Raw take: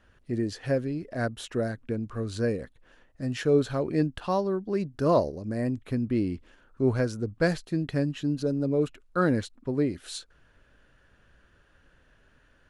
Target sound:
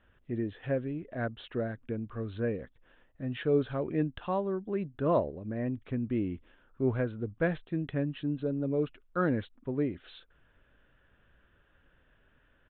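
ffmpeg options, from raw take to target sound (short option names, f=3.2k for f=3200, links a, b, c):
-af "aresample=8000,aresample=44100,volume=-4.5dB"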